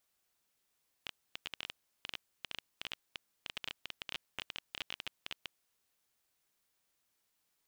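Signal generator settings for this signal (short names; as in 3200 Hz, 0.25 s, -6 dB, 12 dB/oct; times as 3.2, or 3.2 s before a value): random clicks 14/s -22 dBFS 4.45 s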